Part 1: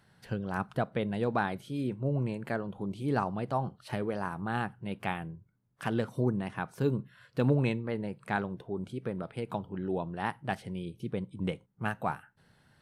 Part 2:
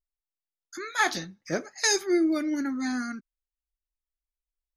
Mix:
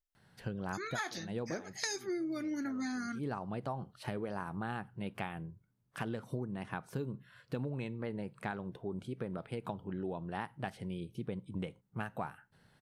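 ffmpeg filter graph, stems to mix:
-filter_complex "[0:a]adelay=150,volume=0.794[s0];[1:a]volume=0.75,asplit=2[s1][s2];[s2]apad=whole_len=571552[s3];[s0][s3]sidechaincompress=threshold=0.00631:ratio=8:attack=16:release=177[s4];[s4][s1]amix=inputs=2:normalize=0,acompressor=threshold=0.02:ratio=10"

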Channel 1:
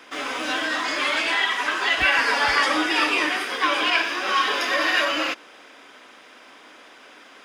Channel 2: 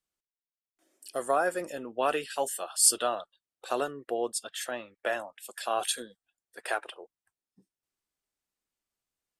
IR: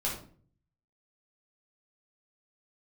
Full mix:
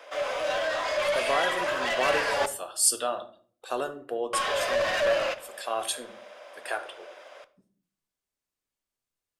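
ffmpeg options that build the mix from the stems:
-filter_complex "[0:a]highpass=f=580:t=q:w=6.9,asoftclip=type=tanh:threshold=0.126,volume=0.473,asplit=3[s0][s1][s2];[s0]atrim=end=2.46,asetpts=PTS-STARTPTS,afade=t=out:st=2.456:d=0.004:c=hsin[s3];[s1]atrim=start=2.46:end=4.33,asetpts=PTS-STARTPTS,volume=0[s4];[s2]atrim=start=4.33,asetpts=PTS-STARTPTS,afade=t=in:d=0.004:c=hsin[s5];[s3][s4][s5]concat=n=3:v=0:a=1,asplit=2[s6][s7];[s7]volume=0.158[s8];[1:a]volume=0.708,asplit=2[s9][s10];[s10]volume=0.299[s11];[2:a]atrim=start_sample=2205[s12];[s8][s11]amix=inputs=2:normalize=0[s13];[s13][s12]afir=irnorm=-1:irlink=0[s14];[s6][s9][s14]amix=inputs=3:normalize=0"

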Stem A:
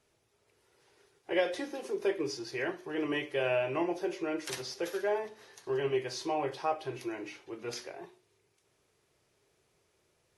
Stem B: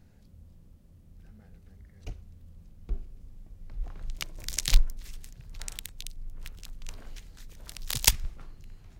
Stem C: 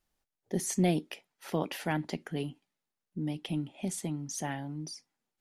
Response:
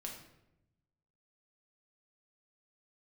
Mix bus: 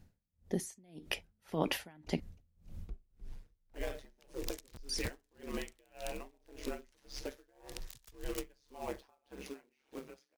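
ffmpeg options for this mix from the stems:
-filter_complex "[0:a]acompressor=threshold=0.0224:ratio=12,acrusher=bits=3:mode=log:mix=0:aa=0.000001,aeval=exprs='val(0)*sin(2*PI*68*n/s)':c=same,adelay=2450,volume=0.398[s0];[1:a]aeval=exprs='(mod(3.55*val(0)+1,2)-1)/3.55':c=same,volume=0.708,afade=t=out:st=2.69:d=0.7:silence=0.334965,asplit=2[s1][s2];[s2]volume=0.178[s3];[2:a]acompressor=threshold=0.0251:ratio=6,volume=1.19,asplit=3[s4][s5][s6];[s4]atrim=end=2.2,asetpts=PTS-STARTPTS,afade=t=out:st=2.196:d=0.004:c=hsin[s7];[s5]atrim=start=2.2:end=4.89,asetpts=PTS-STARTPTS,volume=0[s8];[s6]atrim=start=4.89,asetpts=PTS-STARTPTS,afade=t=in:d=0.004:c=hsin[s9];[s7][s8][s9]concat=n=3:v=0:a=1,asplit=2[s10][s11];[s11]apad=whole_len=396608[s12];[s1][s12]sidechaincompress=threshold=0.00794:ratio=8:attack=5.4:release=182[s13];[s3]aecho=0:1:306|612|918|1224:1|0.29|0.0841|0.0244[s14];[s0][s13][s10][s14]amix=inputs=4:normalize=0,dynaudnorm=f=250:g=9:m=2.99,aeval=exprs='val(0)*pow(10,-33*(0.5-0.5*cos(2*PI*1.8*n/s))/20)':c=same"

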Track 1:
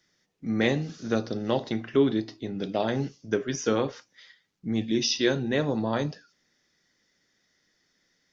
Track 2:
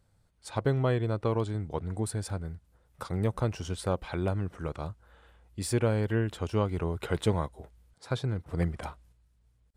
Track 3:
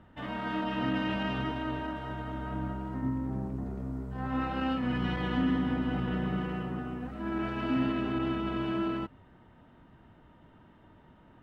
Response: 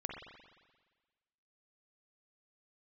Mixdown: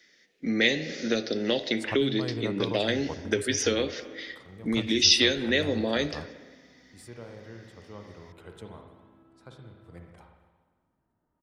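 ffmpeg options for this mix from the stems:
-filter_complex "[0:a]equalizer=f=125:t=o:w=1:g=-9,equalizer=f=250:t=o:w=1:g=6,equalizer=f=500:t=o:w=1:g=8,equalizer=f=1000:t=o:w=1:g=-9,equalizer=f=2000:t=o:w=1:g=12,equalizer=f=4000:t=o:w=1:g=6,volume=1.12,asplit=3[s0][s1][s2];[s1]volume=0.299[s3];[1:a]adelay=1350,volume=0.794,asplit=2[s4][s5];[s5]volume=0.188[s6];[2:a]lowpass=1400,acompressor=threshold=0.0141:ratio=6,adelay=1050,volume=0.119[s7];[s2]apad=whole_len=494670[s8];[s4][s8]sidechaingate=range=0.0631:threshold=0.00891:ratio=16:detection=peak[s9];[3:a]atrim=start_sample=2205[s10];[s3][s6]amix=inputs=2:normalize=0[s11];[s11][s10]afir=irnorm=-1:irlink=0[s12];[s0][s9][s7][s12]amix=inputs=4:normalize=0,acrossover=split=130|3000[s13][s14][s15];[s14]acompressor=threshold=0.0631:ratio=4[s16];[s13][s16][s15]amix=inputs=3:normalize=0,lowshelf=f=210:g=-5"

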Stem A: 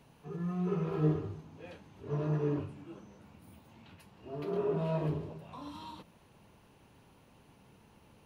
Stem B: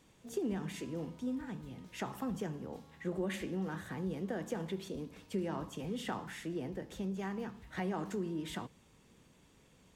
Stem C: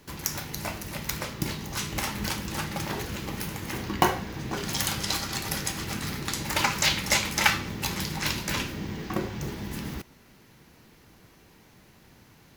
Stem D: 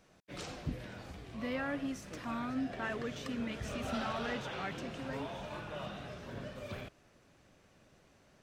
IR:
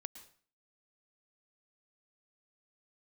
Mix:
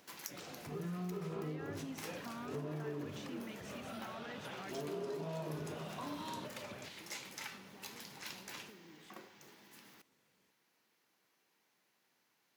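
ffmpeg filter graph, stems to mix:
-filter_complex "[0:a]acompressor=threshold=0.02:ratio=6,adelay=450,volume=1.33[s0];[1:a]acompressor=threshold=0.00708:ratio=6,adelay=550,volume=0.211[s1];[2:a]highpass=f=770:p=1,alimiter=limit=0.211:level=0:latency=1:release=278,volume=0.398,afade=t=out:st=6.24:d=0.66:silence=0.334965[s2];[3:a]alimiter=level_in=2.82:limit=0.0631:level=0:latency=1:release=149,volume=0.355,acompressor=mode=upward:threshold=0.00126:ratio=2.5,volume=0.631,asplit=2[s3][s4];[s4]apad=whole_len=554290[s5];[s2][s5]sidechaincompress=threshold=0.00126:ratio=6:attack=5.7:release=116[s6];[s0][s1][s6][s3]amix=inputs=4:normalize=0,highpass=150,acompressor=threshold=0.0126:ratio=6"

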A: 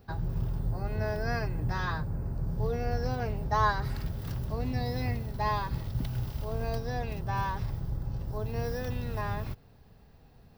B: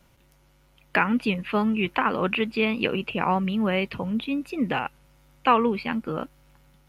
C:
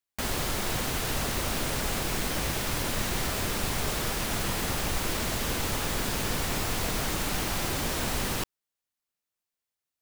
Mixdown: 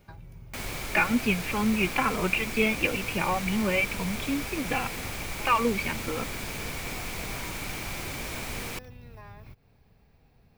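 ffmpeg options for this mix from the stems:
-filter_complex "[0:a]acompressor=threshold=0.0112:ratio=5,volume=0.596[s0];[1:a]asplit=2[s1][s2];[s2]adelay=2.8,afreqshift=-2.2[s3];[s1][s3]amix=inputs=2:normalize=1,volume=0.891[s4];[2:a]adelay=350,volume=0.473[s5];[s0][s4][s5]amix=inputs=3:normalize=0,equalizer=f=2300:w=6.7:g=11.5"

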